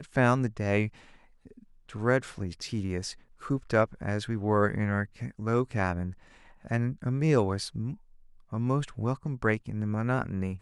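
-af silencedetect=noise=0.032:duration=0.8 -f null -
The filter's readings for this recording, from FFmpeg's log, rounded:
silence_start: 0.87
silence_end: 1.95 | silence_duration: 1.08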